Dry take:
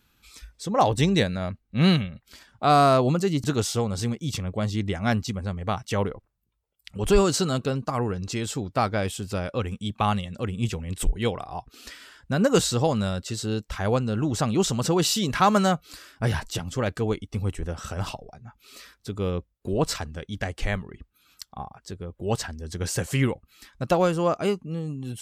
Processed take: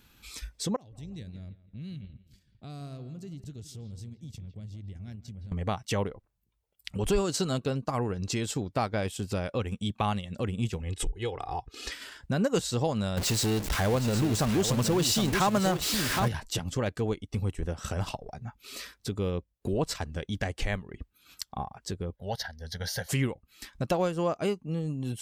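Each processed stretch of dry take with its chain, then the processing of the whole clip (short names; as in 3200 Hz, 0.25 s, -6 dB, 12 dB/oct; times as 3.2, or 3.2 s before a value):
0.76–5.52 passive tone stack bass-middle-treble 10-0-1 + compressor 5:1, threshold -44 dBFS + analogue delay 0.166 s, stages 4096, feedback 37%, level -12.5 dB
10.81–11.92 LPF 8300 Hz + compressor 2:1, threshold -33 dBFS + comb 2.4 ms, depth 66%
13.17–16.28 zero-crossing step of -23 dBFS + echo 0.765 s -7.5 dB
22.16–23.09 low shelf 500 Hz -9 dB + fixed phaser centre 1700 Hz, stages 8
whole clip: bell 1300 Hz -3.5 dB 0.37 oct; transient shaper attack -1 dB, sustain -6 dB; compressor 2:1, threshold -38 dBFS; gain +5.5 dB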